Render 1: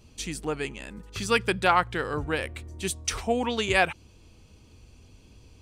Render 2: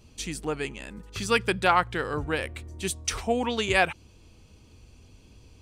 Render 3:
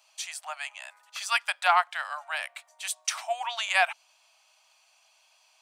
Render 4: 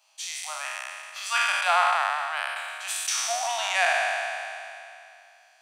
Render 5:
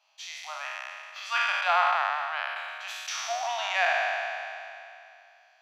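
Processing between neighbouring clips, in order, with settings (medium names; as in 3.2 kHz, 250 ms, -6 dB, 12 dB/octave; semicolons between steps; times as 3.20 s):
no audible change
steep high-pass 620 Hz 96 dB/octave
spectral sustain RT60 2.61 s; trim -3.5 dB
boxcar filter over 5 samples; trim -1.5 dB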